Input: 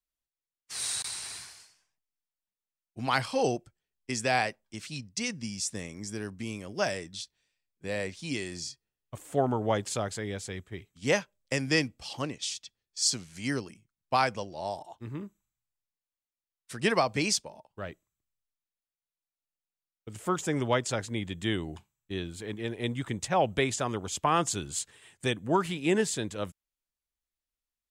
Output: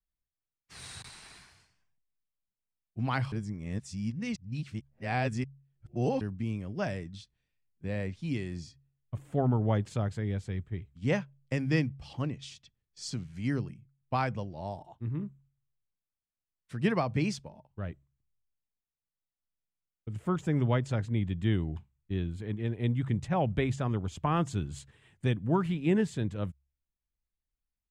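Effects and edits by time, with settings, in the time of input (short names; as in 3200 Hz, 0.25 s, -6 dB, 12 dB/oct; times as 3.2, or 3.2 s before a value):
1.09–1.51 bell 96 Hz -15 dB 1 oct
3.32–6.21 reverse
whole clip: tone controls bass +14 dB, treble -12 dB; de-hum 68.57 Hz, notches 2; gain -5.5 dB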